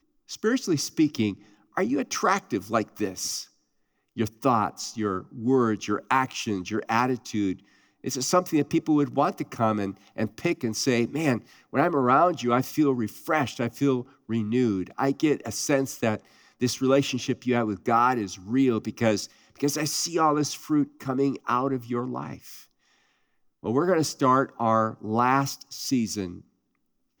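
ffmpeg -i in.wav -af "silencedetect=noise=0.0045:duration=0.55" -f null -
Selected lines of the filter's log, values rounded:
silence_start: 3.46
silence_end: 4.16 | silence_duration: 0.70
silence_start: 22.65
silence_end: 23.63 | silence_duration: 0.99
silence_start: 26.41
silence_end: 27.20 | silence_duration: 0.79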